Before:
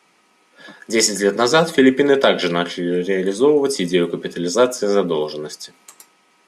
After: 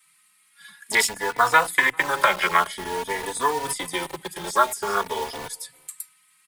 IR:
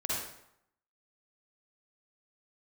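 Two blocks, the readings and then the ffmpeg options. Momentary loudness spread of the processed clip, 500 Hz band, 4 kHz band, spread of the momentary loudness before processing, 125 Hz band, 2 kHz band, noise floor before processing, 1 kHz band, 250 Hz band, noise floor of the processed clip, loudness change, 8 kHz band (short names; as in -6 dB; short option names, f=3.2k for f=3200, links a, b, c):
16 LU, -13.5 dB, -6.5 dB, 10 LU, -14.5 dB, +2.0 dB, -58 dBFS, +3.0 dB, -19.0 dB, -61 dBFS, -5.5 dB, -4.5 dB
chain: -filter_complex "[0:a]afwtdn=0.0794,acrossover=split=200|450|1200|4200[a][b][c][d][e];[a]acompressor=threshold=-36dB:ratio=4[f];[b]acompressor=threshold=-28dB:ratio=4[g];[c]acompressor=threshold=-26dB:ratio=4[h];[d]acompressor=threshold=-34dB:ratio=4[i];[e]acompressor=threshold=-52dB:ratio=4[j];[f][g][h][i][j]amix=inputs=5:normalize=0,equalizer=f=125:t=o:w=1:g=9,equalizer=f=250:t=o:w=1:g=-10,equalizer=f=500:t=o:w=1:g=-9,equalizer=f=1k:t=o:w=1:g=11,equalizer=f=2k:t=o:w=1:g=9,equalizer=f=4k:t=o:w=1:g=12,equalizer=f=8k:t=o:w=1:g=8,acrossover=split=350|1200|5600[k][l][m][n];[k]acompressor=threshold=-48dB:ratio=6[o];[l]acrusher=bits=5:mix=0:aa=0.000001[p];[m]highshelf=f=2.7k:g=-7[q];[n]aexciter=amount=11.8:drive=4.3:freq=8.5k[r];[o][p][q][r]amix=inputs=4:normalize=0,asplit=2[s][t];[t]adelay=396.5,volume=-28dB,highshelf=f=4k:g=-8.92[u];[s][u]amix=inputs=2:normalize=0,asplit=2[v][w];[w]adelay=3.4,afreqshift=0.49[x];[v][x]amix=inputs=2:normalize=1,volume=5.5dB"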